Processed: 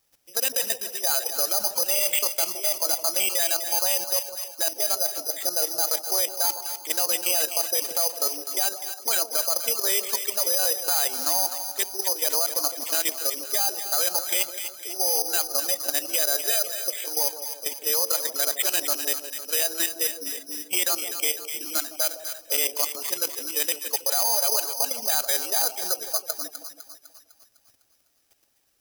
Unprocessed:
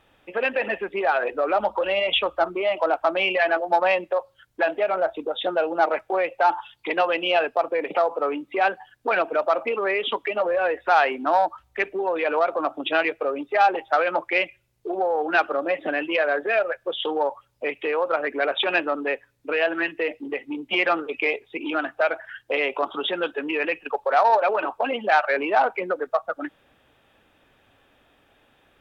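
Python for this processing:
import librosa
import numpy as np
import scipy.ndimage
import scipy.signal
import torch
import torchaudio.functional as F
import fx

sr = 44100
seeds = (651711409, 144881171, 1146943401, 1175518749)

p1 = fx.level_steps(x, sr, step_db=12)
p2 = (np.kron(p1[::8], np.eye(8)[0]) * 8)[:len(p1)]
p3 = p2 + fx.echo_split(p2, sr, split_hz=820.0, low_ms=160, high_ms=252, feedback_pct=52, wet_db=-9.0, dry=0)
y = F.gain(torch.from_numpy(p3), -7.5).numpy()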